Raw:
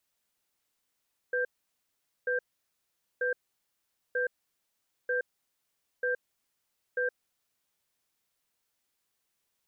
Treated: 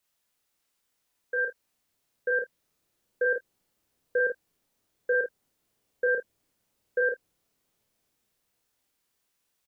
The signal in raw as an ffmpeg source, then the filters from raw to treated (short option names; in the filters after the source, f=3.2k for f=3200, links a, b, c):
-f lavfi -i "aevalsrc='0.0355*(sin(2*PI*496*t)+sin(2*PI*1580*t))*clip(min(mod(t,0.94),0.12-mod(t,0.94))/0.005,0,1)':d=6.31:s=44100"
-filter_complex "[0:a]acrossover=split=610[a][b];[a]dynaudnorm=f=620:g=7:m=10.5dB[c];[b]asplit=2[d][e];[e]adelay=27,volume=-13.5dB[f];[d][f]amix=inputs=2:normalize=0[g];[c][g]amix=inputs=2:normalize=0,aecho=1:1:31|50:0.631|0.501"